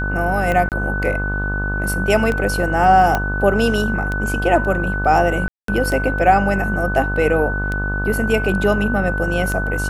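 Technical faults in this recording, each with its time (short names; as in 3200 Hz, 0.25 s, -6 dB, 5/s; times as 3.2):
buzz 50 Hz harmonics 30 -23 dBFS
tick 33 1/3 rpm -11 dBFS
tone 1500 Hz -23 dBFS
0.69–0.72 gap 28 ms
3.15 pop -5 dBFS
5.48–5.68 gap 0.203 s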